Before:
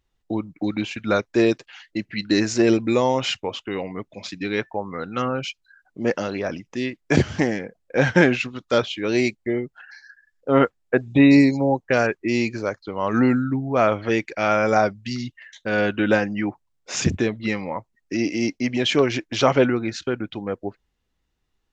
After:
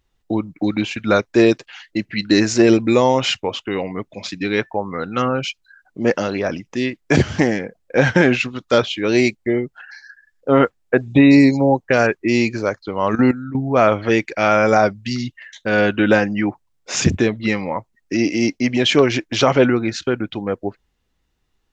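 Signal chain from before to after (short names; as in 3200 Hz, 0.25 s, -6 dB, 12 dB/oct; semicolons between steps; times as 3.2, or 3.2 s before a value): 13.15–13.55 level quantiser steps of 17 dB; maximiser +6 dB; gain -1 dB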